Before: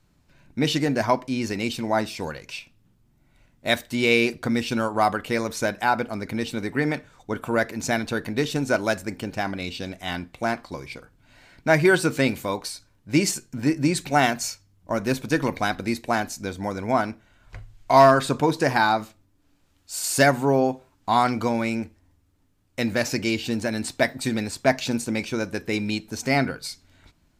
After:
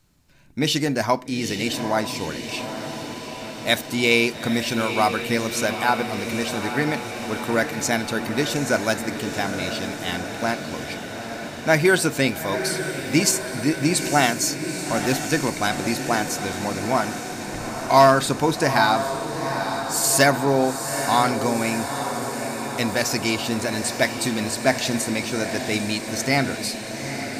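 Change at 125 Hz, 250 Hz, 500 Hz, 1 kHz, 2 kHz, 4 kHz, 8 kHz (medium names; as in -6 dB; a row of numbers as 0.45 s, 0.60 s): +1.0 dB, +1.0 dB, +1.0 dB, +1.5 dB, +2.5 dB, +5.0 dB, +7.5 dB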